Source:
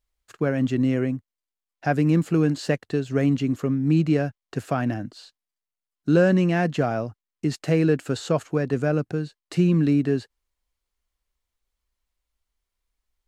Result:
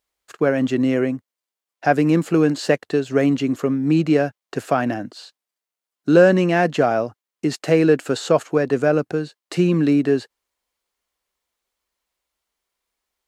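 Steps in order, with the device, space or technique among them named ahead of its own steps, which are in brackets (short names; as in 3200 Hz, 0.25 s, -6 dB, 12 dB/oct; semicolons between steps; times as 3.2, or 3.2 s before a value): filter by subtraction (in parallel: LPF 500 Hz 12 dB/oct + phase invert); on the sum: gain +5.5 dB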